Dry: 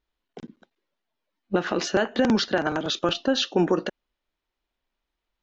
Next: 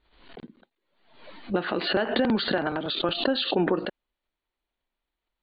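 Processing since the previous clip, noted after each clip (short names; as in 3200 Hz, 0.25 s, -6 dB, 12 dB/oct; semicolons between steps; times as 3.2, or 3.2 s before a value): Chebyshev low-pass 4600 Hz, order 10; backwards sustainer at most 80 dB/s; gain -2.5 dB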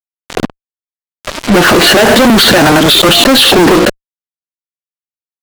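fuzz box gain 46 dB, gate -40 dBFS; gain +9 dB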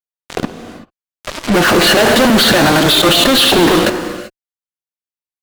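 non-linear reverb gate 0.41 s flat, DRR 8 dB; gain -4.5 dB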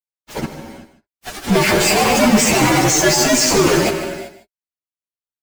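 inharmonic rescaling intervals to 121%; echo 0.152 s -13 dB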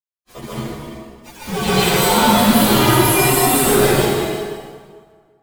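inharmonic rescaling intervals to 118%; plate-style reverb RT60 1.7 s, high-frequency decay 0.75×, pre-delay 0.115 s, DRR -9 dB; gain -5.5 dB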